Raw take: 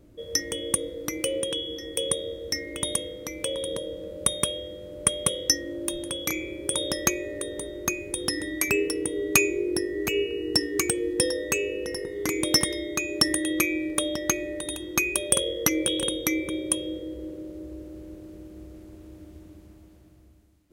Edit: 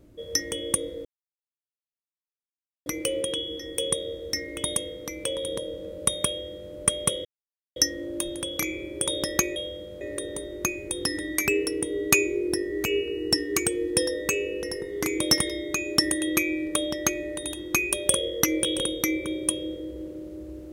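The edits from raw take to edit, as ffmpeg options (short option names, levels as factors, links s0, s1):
-filter_complex "[0:a]asplit=5[s0][s1][s2][s3][s4];[s0]atrim=end=1.05,asetpts=PTS-STARTPTS,afade=t=out:st=1.046:d=0.004:c=hsin,apad=pad_dur=1.81[s5];[s1]atrim=start=1.05:end=5.44,asetpts=PTS-STARTPTS,afade=t=in:d=0.004:c=hsin,afade=t=out:st=4.386:d=0.004:c=hsin,apad=pad_dur=0.51[s6];[s2]atrim=start=5.44:end=7.242,asetpts=PTS-STARTPTS,afade=t=in:d=0.004:c=hsin[s7];[s3]atrim=start=4.468:end=4.922[s8];[s4]atrim=start=7.238[s9];[s5][s6][s7]concat=n=3:v=0:a=1[s10];[s10][s8]acrossfade=d=0.004:c1=hsin:c2=hsin[s11];[s11][s9]acrossfade=d=0.004:c1=hsin:c2=hsin"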